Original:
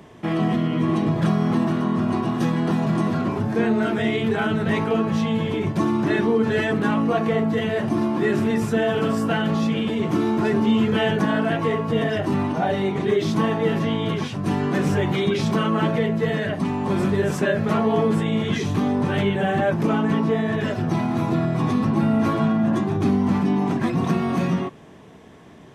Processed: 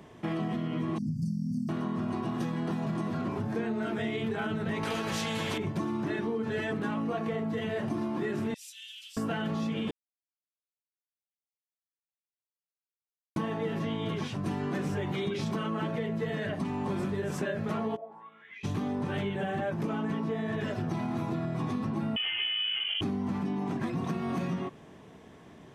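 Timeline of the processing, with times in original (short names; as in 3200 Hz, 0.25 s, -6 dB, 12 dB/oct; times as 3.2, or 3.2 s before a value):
0.98–1.69 brick-wall FIR band-stop 290–4400 Hz
4.83–5.58 spectral compressor 2:1
8.54–9.17 steep high-pass 2900 Hz
9.91–13.36 mute
17.95–18.63 band-pass 540 Hz -> 2600 Hz, Q 13
22.16–23.01 inverted band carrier 3200 Hz
whole clip: compressor, threshold -23 dBFS; gain -5.5 dB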